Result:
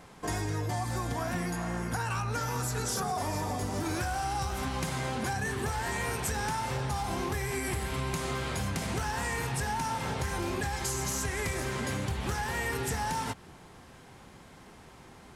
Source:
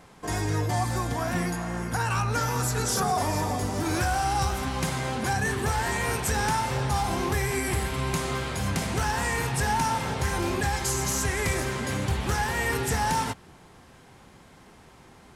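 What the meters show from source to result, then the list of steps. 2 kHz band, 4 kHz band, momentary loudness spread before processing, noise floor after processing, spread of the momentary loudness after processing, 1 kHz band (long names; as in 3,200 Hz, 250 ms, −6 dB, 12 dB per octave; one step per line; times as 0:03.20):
−5.5 dB, −5.5 dB, 3 LU, −52 dBFS, 20 LU, −6.0 dB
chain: downward compressor, threshold −29 dBFS, peak gain reduction 7.5 dB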